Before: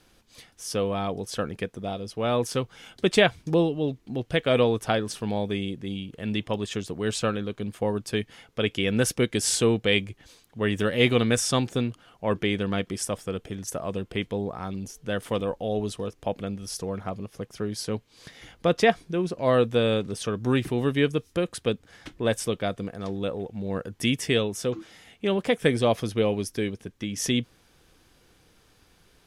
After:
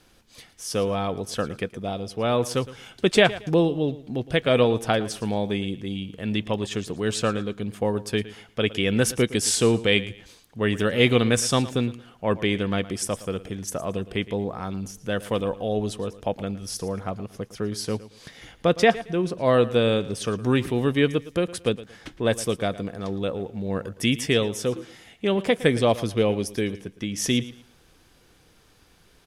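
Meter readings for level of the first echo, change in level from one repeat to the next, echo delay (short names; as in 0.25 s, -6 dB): -17.0 dB, -11.5 dB, 0.113 s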